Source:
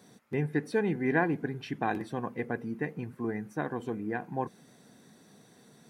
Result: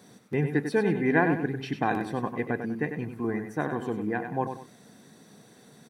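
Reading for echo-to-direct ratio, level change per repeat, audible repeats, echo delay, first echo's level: −7.5 dB, −10.0 dB, 2, 97 ms, −8.0 dB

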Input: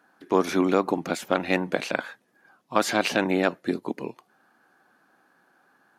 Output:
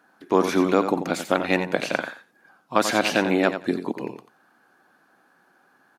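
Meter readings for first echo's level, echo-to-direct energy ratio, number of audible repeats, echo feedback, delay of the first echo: −9.5 dB, −9.5 dB, 2, 16%, 89 ms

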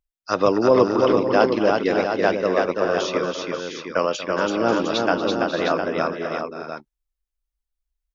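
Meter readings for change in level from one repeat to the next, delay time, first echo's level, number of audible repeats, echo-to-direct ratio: repeats not evenly spaced, 235 ms, −14.5 dB, 6, −0.5 dB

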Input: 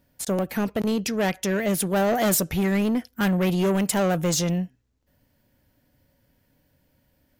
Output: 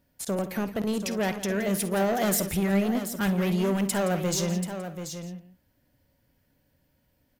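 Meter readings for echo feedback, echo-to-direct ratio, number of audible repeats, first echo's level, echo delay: repeats not evenly spaced, −7.0 dB, 5, −16.0 dB, 51 ms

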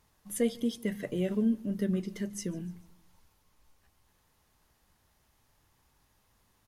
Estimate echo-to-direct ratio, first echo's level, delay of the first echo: −22.5 dB, −23.5 dB, 147 ms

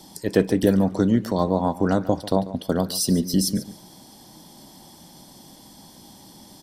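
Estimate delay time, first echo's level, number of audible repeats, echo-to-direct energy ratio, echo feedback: 142 ms, −16.0 dB, 2, −16.0 dB, 20%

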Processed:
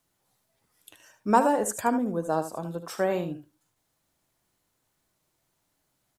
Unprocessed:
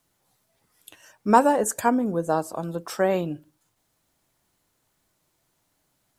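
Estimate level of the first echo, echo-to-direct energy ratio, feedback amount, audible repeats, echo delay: −10.5 dB, −10.5 dB, repeats not evenly spaced, 1, 76 ms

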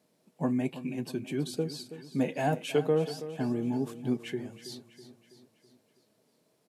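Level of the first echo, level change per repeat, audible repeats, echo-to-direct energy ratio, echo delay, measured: −13.5 dB, −5.5 dB, 4, −12.0 dB, 326 ms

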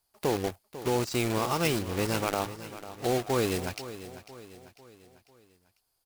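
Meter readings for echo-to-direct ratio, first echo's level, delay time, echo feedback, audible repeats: −13.0 dB, −14.0 dB, 497 ms, 47%, 4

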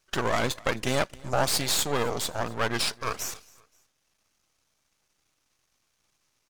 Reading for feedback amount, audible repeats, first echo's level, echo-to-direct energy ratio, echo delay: 39%, 2, −24.0 dB, −23.5 dB, 264 ms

